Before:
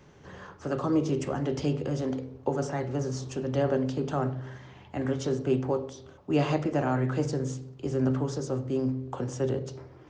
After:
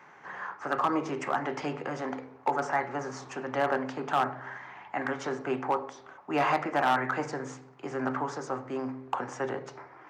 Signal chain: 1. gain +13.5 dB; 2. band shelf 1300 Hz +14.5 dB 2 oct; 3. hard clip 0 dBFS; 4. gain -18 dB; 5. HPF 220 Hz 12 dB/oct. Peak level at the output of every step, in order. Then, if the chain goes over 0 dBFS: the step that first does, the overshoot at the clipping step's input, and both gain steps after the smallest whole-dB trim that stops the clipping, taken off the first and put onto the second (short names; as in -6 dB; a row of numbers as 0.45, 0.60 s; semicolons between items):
+1.0, +8.0, 0.0, -18.0, -14.5 dBFS; step 1, 8.0 dB; step 1 +5.5 dB, step 4 -10 dB